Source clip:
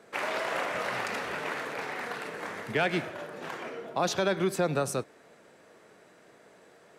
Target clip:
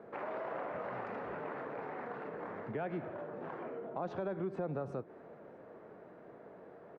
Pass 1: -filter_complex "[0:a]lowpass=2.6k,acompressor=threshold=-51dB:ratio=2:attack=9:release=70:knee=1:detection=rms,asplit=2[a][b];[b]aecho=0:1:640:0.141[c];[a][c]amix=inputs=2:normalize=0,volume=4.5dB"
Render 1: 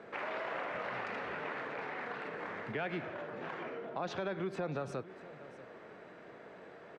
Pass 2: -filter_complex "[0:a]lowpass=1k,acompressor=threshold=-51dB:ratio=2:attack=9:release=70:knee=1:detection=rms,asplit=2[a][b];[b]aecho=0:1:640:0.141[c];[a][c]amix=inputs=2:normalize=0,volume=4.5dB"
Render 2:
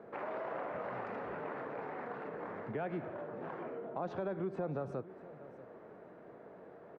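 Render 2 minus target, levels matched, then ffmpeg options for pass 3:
echo-to-direct +9 dB
-filter_complex "[0:a]lowpass=1k,acompressor=threshold=-51dB:ratio=2:attack=9:release=70:knee=1:detection=rms,asplit=2[a][b];[b]aecho=0:1:640:0.0501[c];[a][c]amix=inputs=2:normalize=0,volume=4.5dB"

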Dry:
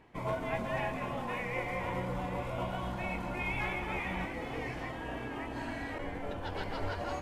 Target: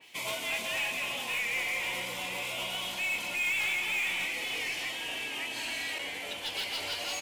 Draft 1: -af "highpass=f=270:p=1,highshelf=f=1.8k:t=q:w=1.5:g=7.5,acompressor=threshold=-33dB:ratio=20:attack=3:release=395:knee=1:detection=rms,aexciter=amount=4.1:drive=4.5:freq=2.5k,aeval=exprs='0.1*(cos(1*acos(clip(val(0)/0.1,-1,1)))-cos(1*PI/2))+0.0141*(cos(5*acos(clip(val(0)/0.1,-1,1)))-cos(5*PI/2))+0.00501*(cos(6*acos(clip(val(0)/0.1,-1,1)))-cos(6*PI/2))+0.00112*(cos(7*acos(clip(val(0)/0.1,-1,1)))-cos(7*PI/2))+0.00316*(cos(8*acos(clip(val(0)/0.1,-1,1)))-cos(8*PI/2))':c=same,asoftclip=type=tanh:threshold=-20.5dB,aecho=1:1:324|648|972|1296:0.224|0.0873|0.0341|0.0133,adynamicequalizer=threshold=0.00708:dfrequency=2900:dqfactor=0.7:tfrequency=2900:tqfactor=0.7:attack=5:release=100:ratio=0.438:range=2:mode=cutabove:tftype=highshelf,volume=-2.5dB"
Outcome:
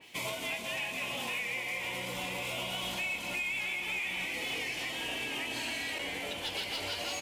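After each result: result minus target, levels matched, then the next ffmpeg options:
compressor: peak gain reduction +11 dB; 250 Hz band +6.5 dB
-af "highpass=f=270:p=1,highshelf=f=1.8k:t=q:w=1.5:g=7.5,aexciter=amount=4.1:drive=4.5:freq=2.5k,aeval=exprs='0.1*(cos(1*acos(clip(val(0)/0.1,-1,1)))-cos(1*PI/2))+0.0141*(cos(5*acos(clip(val(0)/0.1,-1,1)))-cos(5*PI/2))+0.00501*(cos(6*acos(clip(val(0)/0.1,-1,1)))-cos(6*PI/2))+0.00112*(cos(7*acos(clip(val(0)/0.1,-1,1)))-cos(7*PI/2))+0.00316*(cos(8*acos(clip(val(0)/0.1,-1,1)))-cos(8*PI/2))':c=same,asoftclip=type=tanh:threshold=-20.5dB,aecho=1:1:324|648|972|1296:0.224|0.0873|0.0341|0.0133,adynamicequalizer=threshold=0.00708:dfrequency=2900:dqfactor=0.7:tfrequency=2900:tqfactor=0.7:attack=5:release=100:ratio=0.438:range=2:mode=cutabove:tftype=highshelf,volume=-2.5dB"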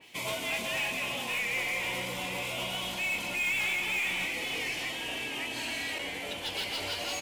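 250 Hz band +5.5 dB
-af "highpass=f=720:p=1,highshelf=f=1.8k:t=q:w=1.5:g=7.5,aexciter=amount=4.1:drive=4.5:freq=2.5k,aeval=exprs='0.1*(cos(1*acos(clip(val(0)/0.1,-1,1)))-cos(1*PI/2))+0.0141*(cos(5*acos(clip(val(0)/0.1,-1,1)))-cos(5*PI/2))+0.00501*(cos(6*acos(clip(val(0)/0.1,-1,1)))-cos(6*PI/2))+0.00112*(cos(7*acos(clip(val(0)/0.1,-1,1)))-cos(7*PI/2))+0.00316*(cos(8*acos(clip(val(0)/0.1,-1,1)))-cos(8*PI/2))':c=same,asoftclip=type=tanh:threshold=-20.5dB,aecho=1:1:324|648|972|1296:0.224|0.0873|0.0341|0.0133,adynamicequalizer=threshold=0.00708:dfrequency=2900:dqfactor=0.7:tfrequency=2900:tqfactor=0.7:attack=5:release=100:ratio=0.438:range=2:mode=cutabove:tftype=highshelf,volume=-2.5dB"

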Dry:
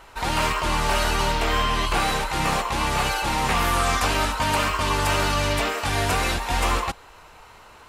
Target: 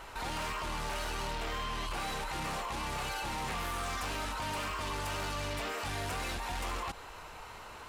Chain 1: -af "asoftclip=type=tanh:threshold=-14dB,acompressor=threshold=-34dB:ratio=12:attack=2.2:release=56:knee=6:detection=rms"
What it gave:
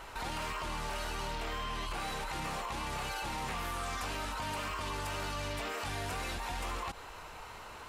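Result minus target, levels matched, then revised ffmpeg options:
soft clip: distortion -9 dB
-af "asoftclip=type=tanh:threshold=-21.5dB,acompressor=threshold=-34dB:ratio=12:attack=2.2:release=56:knee=6:detection=rms"

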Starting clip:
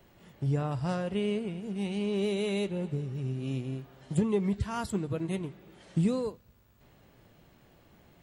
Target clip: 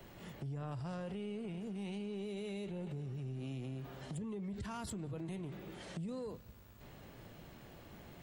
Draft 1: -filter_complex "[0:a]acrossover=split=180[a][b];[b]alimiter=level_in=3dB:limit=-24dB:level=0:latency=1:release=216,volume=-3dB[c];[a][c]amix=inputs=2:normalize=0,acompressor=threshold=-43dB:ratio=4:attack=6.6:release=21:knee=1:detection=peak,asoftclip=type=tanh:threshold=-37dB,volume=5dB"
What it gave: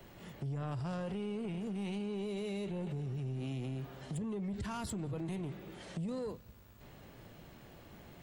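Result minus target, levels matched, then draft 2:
compressor: peak gain reduction -5 dB
-filter_complex "[0:a]acrossover=split=180[a][b];[b]alimiter=level_in=3dB:limit=-24dB:level=0:latency=1:release=216,volume=-3dB[c];[a][c]amix=inputs=2:normalize=0,acompressor=threshold=-49.5dB:ratio=4:attack=6.6:release=21:knee=1:detection=peak,asoftclip=type=tanh:threshold=-37dB,volume=5dB"

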